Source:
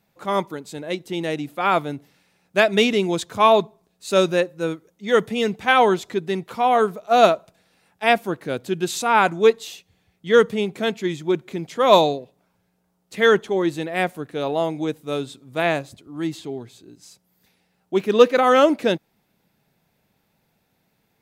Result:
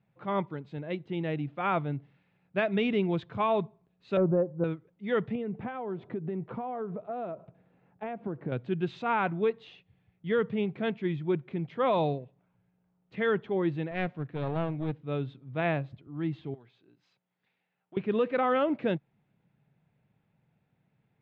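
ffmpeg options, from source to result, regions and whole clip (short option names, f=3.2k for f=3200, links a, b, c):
-filter_complex "[0:a]asettb=1/sr,asplit=3[a][b][c];[a]atrim=end=4.174[d];[b]atrim=start=4.17:end=4.64,asetpts=PTS-STARTPTS,afade=t=in:d=0.004:c=qsin,afade=t=out:st=0.466:d=0.004:c=qsin,lowpass=f=1k:w=0.5412,lowpass=f=1k:w=1.3066,acontrast=55[e];[c]atrim=start=4.636[f];[d][e]acrossfade=d=0.004:c1=hsin:c2=qsin[g];[g][f]acrossfade=d=0.004:c1=qsin:c2=hsin,asettb=1/sr,asplit=3[h][i][j];[h]atrim=end=5.354[k];[i]atrim=start=5.35:end=8.52,asetpts=PTS-STARTPTS,afade=t=in:d=0.004:c=qsin,afade=t=out:st=3.166:d=0.004:c=qsin,lowpass=f=1.4k:p=1,acompressor=threshold=-30dB:ratio=12:attack=3.2:release=140:knee=1:detection=peak,equalizer=f=370:w=0.36:g=7.5[l];[j]atrim=start=8.516[m];[k][l]acrossfade=d=0.004:c1=hsin:c2=qsin[n];[n][m]acrossfade=d=0.004:c1=qsin:c2=hsin,asettb=1/sr,asplit=3[o][p][q];[o]atrim=end=13.914[r];[p]atrim=start=13.91:end=15.01,asetpts=PTS-STARTPTS,afade=t=in:d=0.004:c=qsin,afade=t=out:st=1.096:d=0.004:c=qsin,lowpass=7.9k,aeval=exprs='clip(val(0),-1,0.0237)':c=same[s];[q]atrim=start=15.006[t];[r][s]acrossfade=d=0.004:c1=hsin:c2=qsin[u];[u][t]acrossfade=d=0.004:c1=qsin:c2=hsin,asettb=1/sr,asplit=3[v][w][x];[v]atrim=end=16.544[y];[w]atrim=start=16.54:end=17.97,asetpts=PTS-STARTPTS,afade=t=in:d=0.004:c=qsin,afade=t=out:st=1.426:d=0.004:c=qsin,acompressor=threshold=-33dB:ratio=3:attack=3.2:release=140:knee=1:detection=peak,highpass=f=950:p=1[z];[x]atrim=start=17.966[aa];[y][z]acrossfade=d=0.004:c1=hsin:c2=qsin[ab];[ab][aa]acrossfade=d=0.004:c1=qsin:c2=hsin,lowpass=f=3k:w=0.5412,lowpass=f=3k:w=1.3066,equalizer=f=130:t=o:w=1:g=12.5,alimiter=limit=-9dB:level=0:latency=1:release=95,volume=-9dB"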